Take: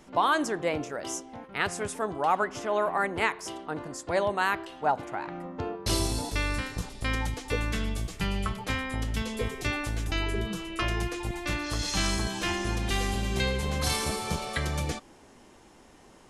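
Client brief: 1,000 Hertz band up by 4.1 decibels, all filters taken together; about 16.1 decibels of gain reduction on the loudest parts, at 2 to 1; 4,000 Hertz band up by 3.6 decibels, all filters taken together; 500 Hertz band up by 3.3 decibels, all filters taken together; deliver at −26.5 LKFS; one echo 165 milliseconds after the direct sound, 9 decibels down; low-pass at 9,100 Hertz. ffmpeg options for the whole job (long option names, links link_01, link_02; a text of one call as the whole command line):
ffmpeg -i in.wav -af "lowpass=9100,equalizer=frequency=500:width_type=o:gain=3,equalizer=frequency=1000:width_type=o:gain=4,equalizer=frequency=4000:width_type=o:gain=4.5,acompressor=threshold=-47dB:ratio=2,aecho=1:1:165:0.355,volume=13.5dB" out.wav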